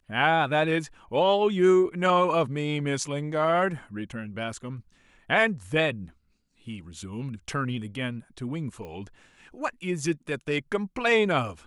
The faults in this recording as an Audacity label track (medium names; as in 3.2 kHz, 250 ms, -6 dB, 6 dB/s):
8.850000	8.850000	pop -28 dBFS